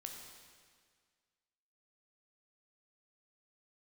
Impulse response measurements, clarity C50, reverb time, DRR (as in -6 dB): 3.5 dB, 1.8 s, 1.5 dB